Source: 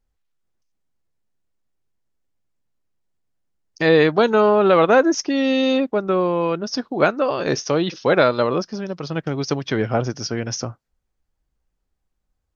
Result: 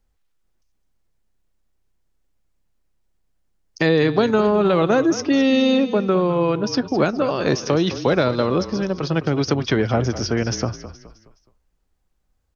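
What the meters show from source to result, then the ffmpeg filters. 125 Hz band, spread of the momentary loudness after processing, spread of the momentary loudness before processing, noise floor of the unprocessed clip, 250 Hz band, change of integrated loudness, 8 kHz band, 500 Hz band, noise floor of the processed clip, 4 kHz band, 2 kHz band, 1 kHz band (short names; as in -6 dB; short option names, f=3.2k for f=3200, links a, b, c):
+4.0 dB, 6 LU, 11 LU, -75 dBFS, +2.5 dB, -0.5 dB, n/a, -1.5 dB, -68 dBFS, +0.5 dB, -2.5 dB, -3.0 dB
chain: -filter_complex "[0:a]acrossover=split=310|4500[a][b][c];[a]acompressor=threshold=-23dB:ratio=4[d];[b]acompressor=threshold=-25dB:ratio=4[e];[c]acompressor=threshold=-40dB:ratio=4[f];[d][e][f]amix=inputs=3:normalize=0,asplit=2[g][h];[h]asplit=4[i][j][k][l];[i]adelay=210,afreqshift=-33,volume=-13dB[m];[j]adelay=420,afreqshift=-66,volume=-21dB[n];[k]adelay=630,afreqshift=-99,volume=-28.9dB[o];[l]adelay=840,afreqshift=-132,volume=-36.9dB[p];[m][n][o][p]amix=inputs=4:normalize=0[q];[g][q]amix=inputs=2:normalize=0,volume=5dB"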